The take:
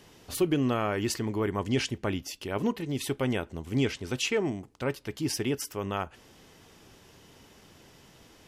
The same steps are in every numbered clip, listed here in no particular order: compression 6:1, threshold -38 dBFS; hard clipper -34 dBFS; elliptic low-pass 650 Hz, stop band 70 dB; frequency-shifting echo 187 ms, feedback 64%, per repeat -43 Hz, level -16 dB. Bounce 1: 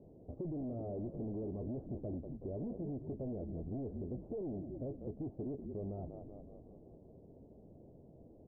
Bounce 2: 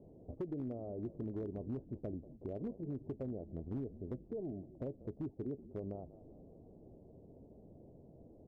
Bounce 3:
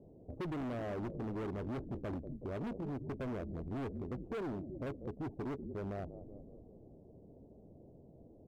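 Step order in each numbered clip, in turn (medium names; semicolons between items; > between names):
frequency-shifting echo > hard clipper > elliptic low-pass > compression; compression > frequency-shifting echo > elliptic low-pass > hard clipper; elliptic low-pass > frequency-shifting echo > hard clipper > compression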